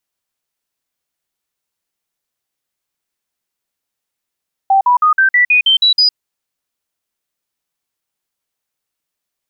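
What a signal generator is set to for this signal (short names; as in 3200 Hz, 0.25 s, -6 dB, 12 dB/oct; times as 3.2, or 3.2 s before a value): stepped sine 779 Hz up, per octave 3, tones 9, 0.11 s, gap 0.05 s -7 dBFS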